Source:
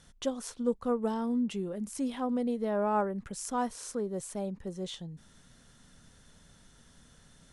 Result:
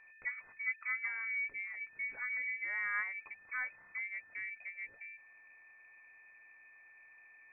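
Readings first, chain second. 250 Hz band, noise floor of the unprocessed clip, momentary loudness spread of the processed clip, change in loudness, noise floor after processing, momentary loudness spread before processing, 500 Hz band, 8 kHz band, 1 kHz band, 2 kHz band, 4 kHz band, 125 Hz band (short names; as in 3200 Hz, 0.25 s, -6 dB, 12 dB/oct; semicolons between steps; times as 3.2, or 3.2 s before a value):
under -40 dB, -60 dBFS, 22 LU, -5.0 dB, -61 dBFS, 9 LU, under -35 dB, under -35 dB, -16.0 dB, +14.5 dB, under -35 dB, under -30 dB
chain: added harmonics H 8 -40 dB, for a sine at -17 dBFS; whine 720 Hz -50 dBFS; inverted band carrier 2500 Hz; gain -8 dB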